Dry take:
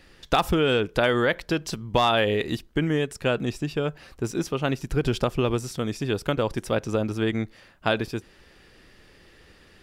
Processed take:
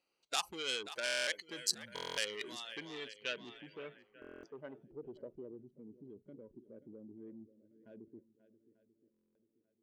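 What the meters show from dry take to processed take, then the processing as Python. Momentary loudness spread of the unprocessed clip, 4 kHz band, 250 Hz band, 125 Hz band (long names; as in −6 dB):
9 LU, −9.0 dB, −25.0 dB, −33.5 dB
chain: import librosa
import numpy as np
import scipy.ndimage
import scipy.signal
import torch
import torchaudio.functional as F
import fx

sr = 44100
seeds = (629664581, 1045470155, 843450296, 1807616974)

p1 = fx.wiener(x, sr, points=25)
p2 = fx.over_compress(p1, sr, threshold_db=-35.0, ratio=-1.0)
p3 = p1 + (p2 * 10.0 ** (1.0 / 20.0))
p4 = fx.peak_eq(p3, sr, hz=78.0, db=-10.5, octaves=1.5)
p5 = fx.noise_reduce_blind(p4, sr, reduce_db=19)
p6 = fx.echo_swing(p5, sr, ms=890, ratio=1.5, feedback_pct=35, wet_db=-17.0)
p7 = 10.0 ** (-18.5 / 20.0) * np.tanh(p6 / 10.0 ** (-18.5 / 20.0))
p8 = fx.filter_sweep_lowpass(p7, sr, from_hz=9200.0, to_hz=270.0, start_s=2.53, end_s=5.71, q=1.2)
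p9 = np.diff(p8, prepend=0.0)
p10 = fx.buffer_glitch(p9, sr, at_s=(1.04, 1.94, 4.2, 9.12), block=1024, repeats=9)
y = p10 * 10.0 ** (4.0 / 20.0)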